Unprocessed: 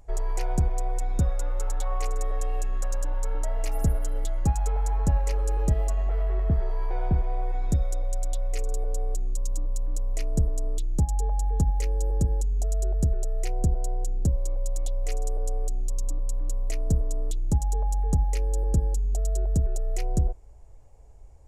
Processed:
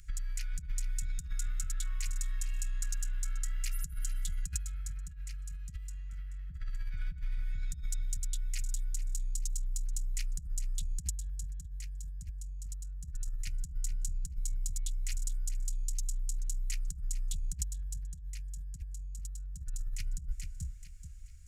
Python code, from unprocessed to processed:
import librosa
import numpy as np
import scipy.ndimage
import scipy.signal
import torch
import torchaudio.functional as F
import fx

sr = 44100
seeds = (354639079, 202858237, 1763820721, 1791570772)

y = scipy.signal.sosfilt(scipy.signal.cheby1(4, 1.0, [180.0, 1400.0], 'bandstop', fs=sr, output='sos'), x)
y = fx.echo_feedback(y, sr, ms=432, feedback_pct=34, wet_db=-15.5)
y = fx.over_compress(y, sr, threshold_db=-28.0, ratio=-0.5)
y = fx.tone_stack(y, sr, knobs='5-5-5')
y = y * librosa.db_to_amplitude(9.0)